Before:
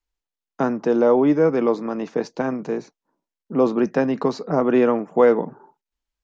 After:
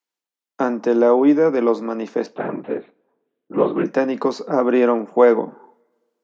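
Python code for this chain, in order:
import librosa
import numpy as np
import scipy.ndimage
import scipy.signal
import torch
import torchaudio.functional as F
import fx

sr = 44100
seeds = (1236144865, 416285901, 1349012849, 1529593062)

y = fx.lpc_vocoder(x, sr, seeds[0], excitation='whisper', order=8, at=(2.26, 3.86))
y = scipy.signal.sosfilt(scipy.signal.butter(4, 210.0, 'highpass', fs=sr, output='sos'), y)
y = fx.rev_double_slope(y, sr, seeds[1], early_s=0.25, late_s=1.6, knee_db=-28, drr_db=12.5)
y = y * 10.0 ** (2.0 / 20.0)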